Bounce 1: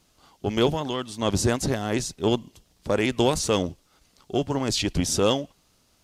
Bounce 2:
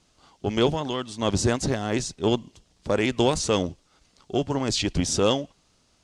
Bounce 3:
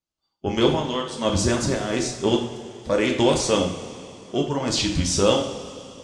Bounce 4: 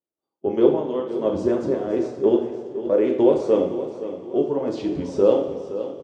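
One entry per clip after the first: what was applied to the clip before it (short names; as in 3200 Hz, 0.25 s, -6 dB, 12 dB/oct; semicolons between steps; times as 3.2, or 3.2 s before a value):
LPF 8900 Hz 24 dB/oct
spectral noise reduction 29 dB; two-slope reverb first 0.54 s, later 3.1 s, from -15 dB, DRR 0.5 dB
band-pass 420 Hz, Q 2; feedback echo 0.517 s, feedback 38%, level -12.5 dB; gain +5.5 dB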